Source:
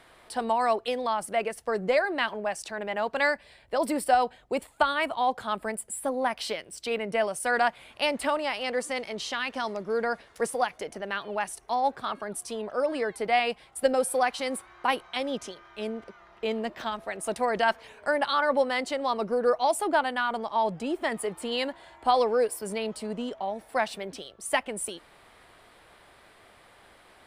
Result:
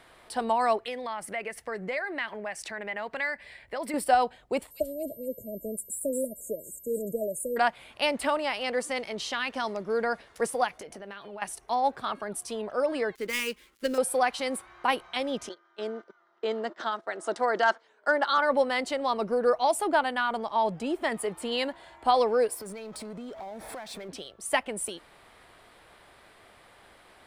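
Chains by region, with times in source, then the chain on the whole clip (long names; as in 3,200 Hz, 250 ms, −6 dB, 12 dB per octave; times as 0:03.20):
0:00.77–0:03.94: parametric band 2,000 Hz +10.5 dB 0.58 octaves + downward compressor 2 to 1, threshold −36 dBFS
0:04.70–0:07.56: linear-phase brick-wall band-stop 650–6,500 Hz + delay with a high-pass on its return 229 ms, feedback 32%, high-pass 5,000 Hz, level −3.5 dB + steady tone 13,000 Hz −48 dBFS
0:10.73–0:11.42: downward compressor 5 to 1, threshold −39 dBFS + double-tracking delay 20 ms −13.5 dB
0:13.15–0:13.98: gap after every zero crossing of 0.066 ms + phaser with its sweep stopped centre 300 Hz, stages 4
0:15.49–0:18.38: noise gate −43 dBFS, range −14 dB + hard clipping −16.5 dBFS + loudspeaker in its box 300–7,600 Hz, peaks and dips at 340 Hz +6 dB, 1,400 Hz +6 dB, 2,500 Hz −9 dB
0:22.54–0:24.09: Butterworth band-reject 2,900 Hz, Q 6.9 + power curve on the samples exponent 0.7 + downward compressor 10 to 1, threshold −37 dBFS
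whole clip: no processing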